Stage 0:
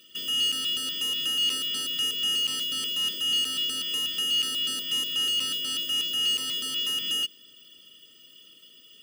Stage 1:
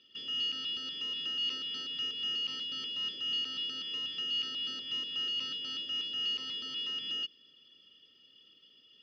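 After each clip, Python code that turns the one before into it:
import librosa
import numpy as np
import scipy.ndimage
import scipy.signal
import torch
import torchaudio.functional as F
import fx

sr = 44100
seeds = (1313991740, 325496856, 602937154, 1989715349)

y = scipy.signal.sosfilt(scipy.signal.butter(8, 5300.0, 'lowpass', fs=sr, output='sos'), x)
y = y * 10.0 ** (-8.0 / 20.0)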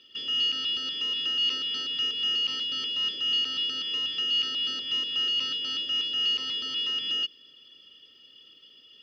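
y = fx.peak_eq(x, sr, hz=180.0, db=-5.0, octaves=1.2)
y = y * 10.0 ** (7.5 / 20.0)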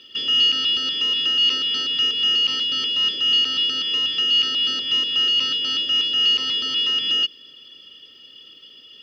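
y = fx.rider(x, sr, range_db=10, speed_s=2.0)
y = y * 10.0 ** (8.0 / 20.0)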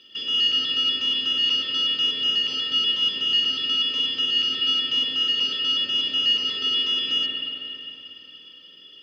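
y = fx.rev_spring(x, sr, rt60_s=3.2, pass_ms=(45, 50), chirp_ms=75, drr_db=-2.0)
y = y * 10.0 ** (-5.5 / 20.0)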